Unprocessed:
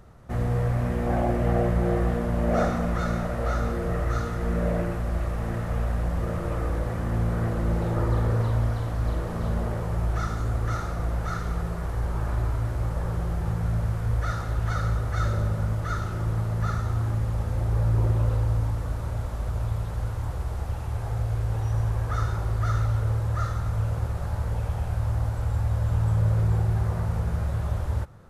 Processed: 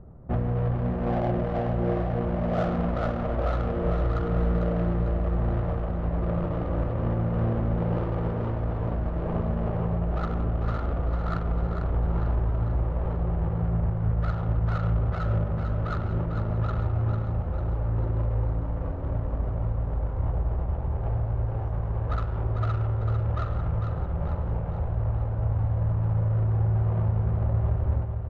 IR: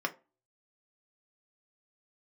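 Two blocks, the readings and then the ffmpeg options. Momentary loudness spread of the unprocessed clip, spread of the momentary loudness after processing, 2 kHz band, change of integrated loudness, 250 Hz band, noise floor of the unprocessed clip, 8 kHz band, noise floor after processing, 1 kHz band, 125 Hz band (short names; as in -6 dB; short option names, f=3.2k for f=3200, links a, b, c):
6 LU, 4 LU, -5.5 dB, -0.5 dB, +0.5 dB, -31 dBFS, n/a, -30 dBFS, -1.5 dB, -0.5 dB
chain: -filter_complex "[0:a]adynamicsmooth=sensitivity=1.5:basefreq=530,alimiter=limit=-23.5dB:level=0:latency=1:release=351,aecho=1:1:448|896|1344|1792|2240|2688|3136:0.447|0.241|0.13|0.0703|0.038|0.0205|0.0111,asplit=2[a][b];[1:a]atrim=start_sample=2205,asetrate=24696,aresample=44100[c];[b][c]afir=irnorm=-1:irlink=0,volume=-20dB[d];[a][d]amix=inputs=2:normalize=0,volume=4.5dB"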